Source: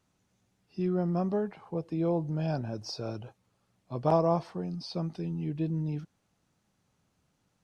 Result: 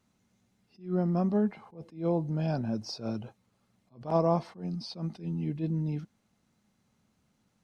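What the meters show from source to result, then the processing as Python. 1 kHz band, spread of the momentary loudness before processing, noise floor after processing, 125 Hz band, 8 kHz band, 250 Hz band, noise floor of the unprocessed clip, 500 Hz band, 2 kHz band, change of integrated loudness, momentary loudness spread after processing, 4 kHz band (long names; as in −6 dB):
−1.5 dB, 12 LU, −74 dBFS, 0.0 dB, can't be measured, +1.0 dB, −76 dBFS, −1.5 dB, −0.5 dB, +0.5 dB, 12 LU, −0.5 dB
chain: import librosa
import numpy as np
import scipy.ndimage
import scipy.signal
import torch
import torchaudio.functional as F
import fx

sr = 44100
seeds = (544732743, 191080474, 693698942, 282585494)

y = fx.small_body(x, sr, hz=(220.0, 2100.0, 4000.0), ring_ms=90, db=10)
y = fx.attack_slew(y, sr, db_per_s=180.0)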